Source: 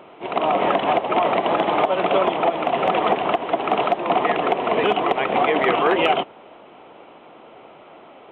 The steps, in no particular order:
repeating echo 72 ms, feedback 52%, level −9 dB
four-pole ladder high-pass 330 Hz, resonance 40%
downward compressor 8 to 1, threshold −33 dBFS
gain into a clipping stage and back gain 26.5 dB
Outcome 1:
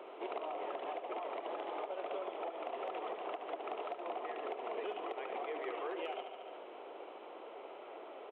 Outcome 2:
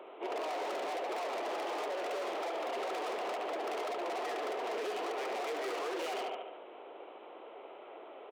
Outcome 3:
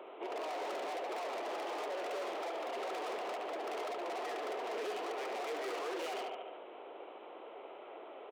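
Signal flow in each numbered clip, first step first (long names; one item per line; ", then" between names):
repeating echo, then downward compressor, then four-pole ladder high-pass, then gain into a clipping stage and back
repeating echo, then gain into a clipping stage and back, then four-pole ladder high-pass, then downward compressor
repeating echo, then gain into a clipping stage and back, then downward compressor, then four-pole ladder high-pass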